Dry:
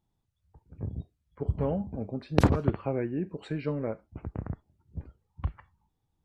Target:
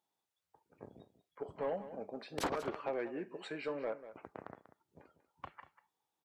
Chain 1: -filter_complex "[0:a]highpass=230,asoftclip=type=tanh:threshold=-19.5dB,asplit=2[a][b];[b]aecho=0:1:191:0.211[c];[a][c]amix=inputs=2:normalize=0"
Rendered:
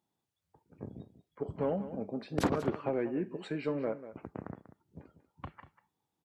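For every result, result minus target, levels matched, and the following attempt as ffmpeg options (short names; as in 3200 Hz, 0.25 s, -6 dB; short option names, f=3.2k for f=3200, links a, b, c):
250 Hz band +4.5 dB; soft clip: distortion -3 dB
-filter_complex "[0:a]highpass=530,asoftclip=type=tanh:threshold=-19.5dB,asplit=2[a][b];[b]aecho=0:1:191:0.211[c];[a][c]amix=inputs=2:normalize=0"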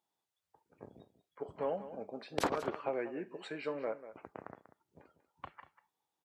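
soft clip: distortion -4 dB
-filter_complex "[0:a]highpass=530,asoftclip=type=tanh:threshold=-28dB,asplit=2[a][b];[b]aecho=0:1:191:0.211[c];[a][c]amix=inputs=2:normalize=0"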